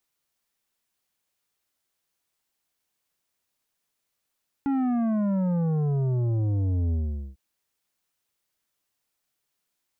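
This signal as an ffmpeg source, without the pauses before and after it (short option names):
-f lavfi -i "aevalsrc='0.0708*clip((2.7-t)/0.44,0,1)*tanh(2.99*sin(2*PI*280*2.7/log(65/280)*(exp(log(65/280)*t/2.7)-1)))/tanh(2.99)':d=2.7:s=44100"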